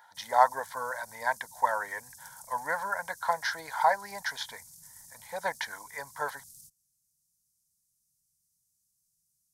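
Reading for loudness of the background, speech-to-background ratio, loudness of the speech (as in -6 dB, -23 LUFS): -49.5 LUFS, 18.0 dB, -31.5 LUFS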